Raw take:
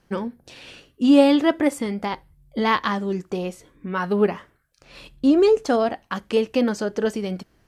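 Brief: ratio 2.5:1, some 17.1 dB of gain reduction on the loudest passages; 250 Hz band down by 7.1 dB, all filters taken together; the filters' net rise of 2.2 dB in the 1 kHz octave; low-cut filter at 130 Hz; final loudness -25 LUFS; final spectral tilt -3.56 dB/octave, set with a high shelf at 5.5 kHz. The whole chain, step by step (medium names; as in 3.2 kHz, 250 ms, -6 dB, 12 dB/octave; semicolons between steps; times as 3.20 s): high-pass 130 Hz; peaking EQ 250 Hz -8.5 dB; peaking EQ 1 kHz +3.5 dB; treble shelf 5.5 kHz -8.5 dB; compression 2.5:1, threshold -39 dBFS; trim +13 dB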